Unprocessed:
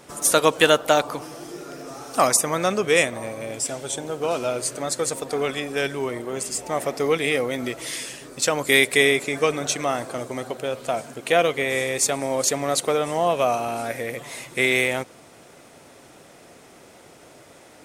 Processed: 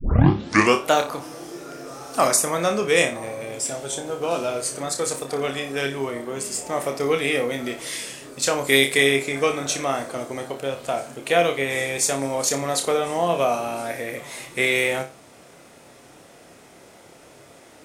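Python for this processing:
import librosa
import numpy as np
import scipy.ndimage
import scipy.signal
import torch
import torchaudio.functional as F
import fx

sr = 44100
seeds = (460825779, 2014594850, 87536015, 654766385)

y = fx.tape_start_head(x, sr, length_s=0.88)
y = fx.room_flutter(y, sr, wall_m=5.0, rt60_s=0.27)
y = y * librosa.db_to_amplitude(-1.0)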